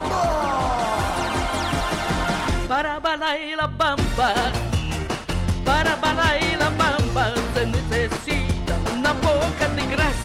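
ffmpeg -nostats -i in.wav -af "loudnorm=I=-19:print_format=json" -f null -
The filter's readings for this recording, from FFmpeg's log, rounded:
"input_i" : "-22.0",
"input_tp" : "-11.8",
"input_lra" : "1.7",
"input_thresh" : "-32.0",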